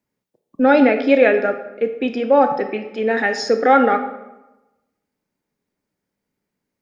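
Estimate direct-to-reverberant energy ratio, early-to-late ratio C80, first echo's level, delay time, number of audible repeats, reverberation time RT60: 7.5 dB, 11.5 dB, no echo audible, no echo audible, no echo audible, 1.0 s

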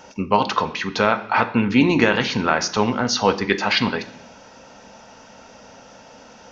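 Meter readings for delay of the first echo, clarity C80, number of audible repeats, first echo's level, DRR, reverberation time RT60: no echo audible, 17.5 dB, no echo audible, no echo audible, 7.0 dB, 0.65 s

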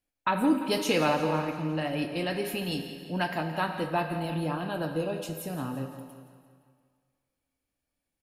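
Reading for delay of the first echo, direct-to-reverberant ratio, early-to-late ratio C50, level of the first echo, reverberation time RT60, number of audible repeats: 172 ms, 5.5 dB, 6.5 dB, −13.5 dB, 2.0 s, 5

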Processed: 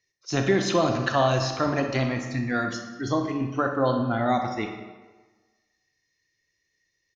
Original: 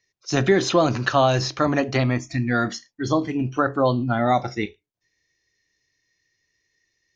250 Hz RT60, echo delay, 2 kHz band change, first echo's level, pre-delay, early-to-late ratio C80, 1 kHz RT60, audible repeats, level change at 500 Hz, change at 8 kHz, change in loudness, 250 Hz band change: 1.3 s, 61 ms, −3.0 dB, −12.5 dB, 32 ms, 8.0 dB, 1.4 s, 1, −3.5 dB, can't be measured, −3.5 dB, −3.0 dB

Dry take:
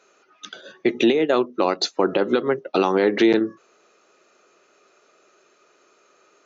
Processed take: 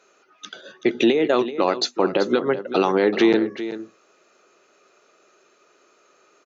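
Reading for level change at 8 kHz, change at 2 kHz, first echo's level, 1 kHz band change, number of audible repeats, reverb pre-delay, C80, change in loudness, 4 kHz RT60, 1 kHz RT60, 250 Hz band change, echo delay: can't be measured, 0.0 dB, −12.5 dB, 0.0 dB, 1, no reverb audible, no reverb audible, 0.0 dB, no reverb audible, no reverb audible, 0.0 dB, 383 ms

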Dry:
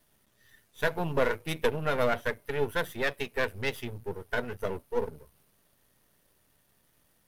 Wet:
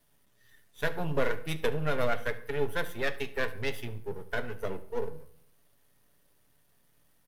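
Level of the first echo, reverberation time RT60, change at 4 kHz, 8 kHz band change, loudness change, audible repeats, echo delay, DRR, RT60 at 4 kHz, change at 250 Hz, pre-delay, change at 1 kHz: −20.0 dB, 0.60 s, −2.0 dB, −2.0 dB, −2.0 dB, 1, 72 ms, 8.5 dB, 0.45 s, −1.5 dB, 7 ms, −3.0 dB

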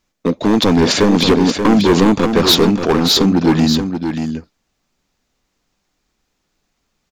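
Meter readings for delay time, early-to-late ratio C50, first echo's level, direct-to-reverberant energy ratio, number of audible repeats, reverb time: 582 ms, no reverb audible, −7.0 dB, no reverb audible, 1, no reverb audible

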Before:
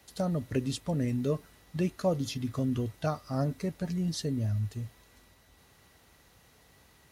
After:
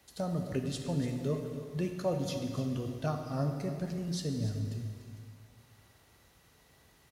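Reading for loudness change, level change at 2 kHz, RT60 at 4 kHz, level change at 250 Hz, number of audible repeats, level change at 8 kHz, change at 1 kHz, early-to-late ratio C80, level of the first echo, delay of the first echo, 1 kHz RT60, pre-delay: −2.5 dB, −2.5 dB, 2.0 s, −3.0 dB, 1, −2.5 dB, −2.5 dB, 5.5 dB, −13.5 dB, 293 ms, 2.2 s, 6 ms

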